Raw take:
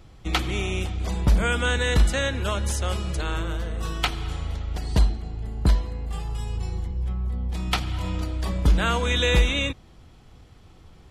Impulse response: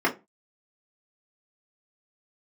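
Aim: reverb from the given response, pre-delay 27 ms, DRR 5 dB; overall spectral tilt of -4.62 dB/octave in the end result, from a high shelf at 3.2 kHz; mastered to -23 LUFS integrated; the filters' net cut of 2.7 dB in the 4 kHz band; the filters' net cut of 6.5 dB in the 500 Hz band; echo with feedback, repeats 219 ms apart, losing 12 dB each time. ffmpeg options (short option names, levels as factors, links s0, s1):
-filter_complex "[0:a]equalizer=f=500:t=o:g=-7.5,highshelf=f=3200:g=4,equalizer=f=4000:t=o:g=-6,aecho=1:1:219|438|657:0.251|0.0628|0.0157,asplit=2[s0][s1];[1:a]atrim=start_sample=2205,adelay=27[s2];[s1][s2]afir=irnorm=-1:irlink=0,volume=0.1[s3];[s0][s3]amix=inputs=2:normalize=0,volume=1.33"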